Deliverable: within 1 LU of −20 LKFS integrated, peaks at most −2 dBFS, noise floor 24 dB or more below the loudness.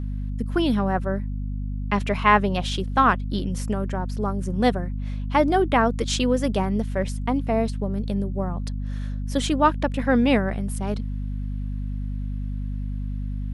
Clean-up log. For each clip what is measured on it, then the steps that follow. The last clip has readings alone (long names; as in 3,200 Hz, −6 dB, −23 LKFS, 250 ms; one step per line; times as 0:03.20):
mains hum 50 Hz; hum harmonics up to 250 Hz; level of the hum −26 dBFS; integrated loudness −24.5 LKFS; sample peak −3.5 dBFS; target loudness −20.0 LKFS
→ hum removal 50 Hz, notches 5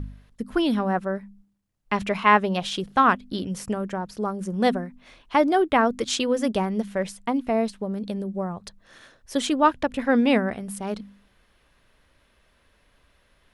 mains hum none found; integrated loudness −24.0 LKFS; sample peak −4.0 dBFS; target loudness −20.0 LKFS
→ level +4 dB
brickwall limiter −2 dBFS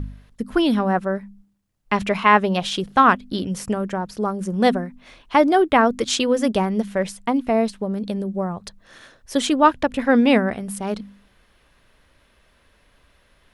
integrated loudness −20.5 LKFS; sample peak −2.0 dBFS; background noise floor −60 dBFS